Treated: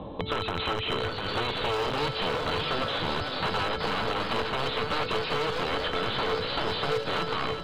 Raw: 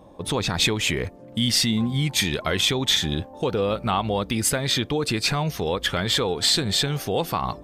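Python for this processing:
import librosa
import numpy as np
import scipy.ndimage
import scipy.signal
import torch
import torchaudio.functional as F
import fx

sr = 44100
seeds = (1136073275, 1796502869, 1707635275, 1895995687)

p1 = fx.low_shelf(x, sr, hz=470.0, db=9.5)
p2 = (np.mod(10.0 ** (14.5 / 20.0) * p1 + 1.0, 2.0) - 1.0) / 10.0 ** (14.5 / 20.0)
p3 = scipy.signal.sosfilt(scipy.signal.cheby1(6, 6, 4100.0, 'lowpass', fs=sr, output='sos'), p2)
p4 = fx.comb_fb(p3, sr, f0_hz=440.0, decay_s=0.3, harmonics='odd', damping=0.0, mix_pct=80)
p5 = np.clip(10.0 ** (30.0 / 20.0) * p4, -1.0, 1.0) / 10.0 ** (30.0 / 20.0)
p6 = fx.echo_pitch(p5, sr, ms=752, semitones=2, count=2, db_per_echo=-6.0)
p7 = p6 + fx.echo_heads(p6, sr, ms=189, heads='second and third', feedback_pct=43, wet_db=-12.5, dry=0)
p8 = fx.band_squash(p7, sr, depth_pct=70)
y = F.gain(torch.from_numpy(p8), 7.0).numpy()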